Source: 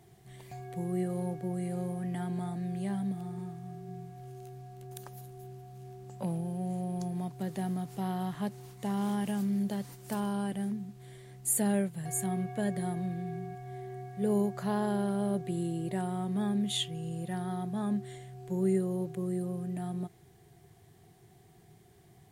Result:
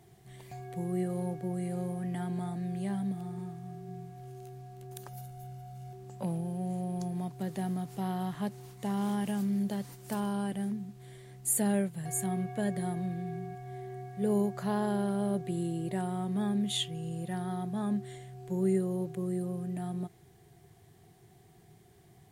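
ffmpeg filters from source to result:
ffmpeg -i in.wav -filter_complex "[0:a]asettb=1/sr,asplit=3[link_01][link_02][link_03];[link_01]atrim=end=5.084[link_04];[link_02]atrim=start=5.08:end=5.93,asetpts=PTS-STARTPTS,afade=type=in:duration=0.004:curve=qsin,afade=type=out:start_time=0.846:duration=0.004:curve=qsin,aecho=1:1:1.4:0.65,atrim=end_sample=37485[link_05];[link_03]atrim=start=5.926[link_06];[link_04][link_05]acrossfade=duration=0.004:curve1=hsin:curve2=qsin[link_07];[link_07][link_06]acrossfade=duration=0.004:curve1=qsin:curve2=hsin" out.wav

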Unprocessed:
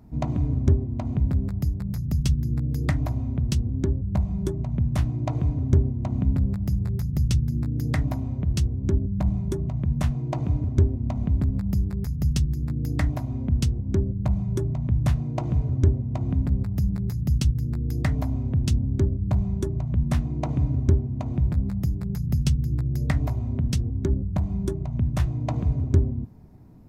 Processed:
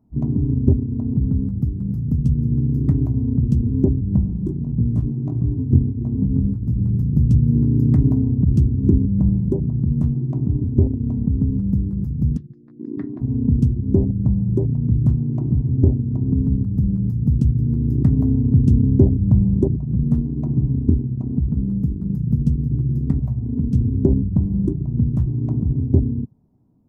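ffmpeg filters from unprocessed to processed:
ffmpeg -i in.wav -filter_complex "[0:a]asettb=1/sr,asplit=3[link_01][link_02][link_03];[link_01]atrim=end=4.304[link_04];[link_02]atrim=start=4.3:end=6.79,asetpts=PTS-STARTPTS,afade=type=in:duration=0.004:curve=qsin,afade=type=out:start_time=2.486:duration=0.004:curve=qsin,flanger=delay=17:depth=5.1:speed=1.7[link_05];[link_03]atrim=start=6.786[link_06];[link_04][link_05]acrossfade=duration=0.004:curve1=hsin:curve2=qsin[link_07];[link_07][link_06]acrossfade=duration=0.004:curve1=qsin:curve2=hsin,asplit=3[link_08][link_09][link_10];[link_08]afade=type=out:start_time=12.36:duration=0.02[link_11];[link_09]highpass=330,equalizer=frequency=350:width_type=q:width=4:gain=7,equalizer=frequency=590:width_type=q:width=4:gain=-6,equalizer=frequency=840:width_type=q:width=4:gain=-7,equalizer=frequency=1800:width_type=q:width=4:gain=8,equalizer=frequency=2900:width_type=q:width=4:gain=-3,lowpass=frequency=3900:width=0.5412,lowpass=frequency=3900:width=1.3066,afade=type=in:start_time=12.36:duration=0.02,afade=type=out:start_time=13.2:duration=0.02[link_12];[link_10]afade=type=in:start_time=13.2:duration=0.02[link_13];[link_11][link_12][link_13]amix=inputs=3:normalize=0,asettb=1/sr,asplit=3[link_14][link_15][link_16];[link_14]atrim=end=19.764[link_17];[link_15]atrim=start=19.76:end=23.75,asetpts=PTS-STARTPTS,afade=type=in:duration=0.004:curve=qsin,afade=type=out:start_time=3.986:duration=0.004:curve=qsin,flanger=delay=4.2:depth=1.6:regen=-49:speed=1.8:shape=sinusoidal[link_18];[link_16]atrim=start=23.746[link_19];[link_17][link_18]acrossfade=duration=0.004:curve1=hsin:curve2=qsin[link_20];[link_20][link_19]acrossfade=duration=0.004:curve1=qsin:curve2=hsin,afwtdn=0.0708,equalizer=frequency=125:width_type=o:width=1:gain=5,equalizer=frequency=250:width_type=o:width=1:gain=9,equalizer=frequency=500:width_type=o:width=1:gain=4,equalizer=frequency=1000:width_type=o:width=1:gain=5,equalizer=frequency=2000:width_type=o:width=1:gain=-7,equalizer=frequency=4000:width_type=o:width=1:gain=-5,dynaudnorm=framelen=320:gausssize=11:maxgain=11.5dB,volume=-1dB" out.wav

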